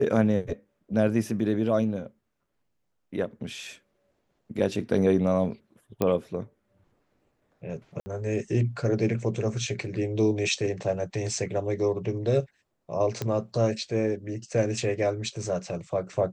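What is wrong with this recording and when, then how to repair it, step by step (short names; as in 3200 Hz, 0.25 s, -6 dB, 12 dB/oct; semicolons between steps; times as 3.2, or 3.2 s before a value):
6.02 pop -12 dBFS
8–8.06 gap 60 ms
13.22 pop -15 dBFS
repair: de-click; interpolate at 8, 60 ms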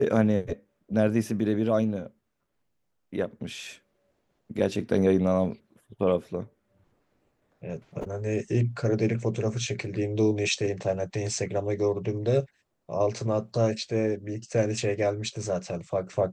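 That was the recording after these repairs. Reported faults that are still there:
none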